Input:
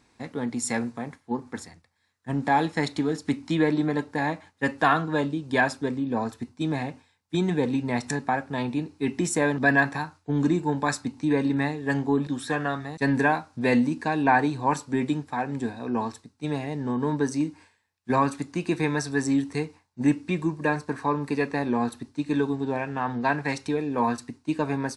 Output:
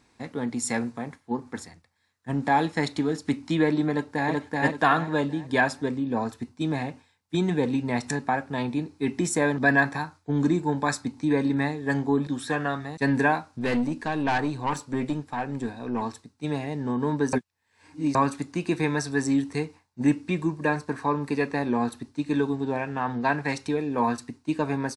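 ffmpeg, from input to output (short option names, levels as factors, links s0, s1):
-filter_complex "[0:a]asplit=2[s0][s1];[s1]afade=t=in:st=3.9:d=0.01,afade=t=out:st=4.33:d=0.01,aecho=0:1:380|760|1140|1520|1900:0.891251|0.311938|0.109178|0.0382124|0.0133743[s2];[s0][s2]amix=inputs=2:normalize=0,asettb=1/sr,asplit=3[s3][s4][s5];[s3]atrim=end=8.664[s6];[s4]atrim=start=8.66:end=12.37,asetpts=PTS-STARTPTS,afade=t=in:d=0.004:c=qsin,afade=t=out:st=3.706:d=0.004:c=qsin,bandreject=f=2800:w=12[s7];[s5]atrim=start=12.366[s8];[s6][s7]acrossfade=d=0.004:c1=hsin:c2=qsin[s9];[s9][s8]acrossfade=d=0.004:c1=qsin:c2=hsin,asettb=1/sr,asplit=3[s10][s11][s12];[s10]atrim=end=13.514[s13];[s11]atrim=start=13.51:end=16.02,asetpts=PTS-STARTPTS,afade=t=in:d=0.004:c=qsin,afade=t=out:st=2.506:d=0.004:c=qsin,aeval=exprs='(tanh(10*val(0)+0.35)-tanh(0.35))/10':c=same[s14];[s12]atrim=start=16.016[s15];[s13][s14]acrossfade=d=0.004:c1=hsin:c2=qsin[s16];[s16][s15]acrossfade=d=0.004:c1=qsin:c2=hsin,asplit=3[s17][s18][s19];[s17]atrim=end=17.332[s20];[s18]atrim=start=17.328:end=18.152,asetpts=PTS-STARTPTS,areverse[s21];[s19]atrim=start=18.148[s22];[s20][s21]acrossfade=d=0.004:c1=hsin:c2=hsin[s23];[s23][s22]acrossfade=d=0.004:c1=hsin:c2=hsin"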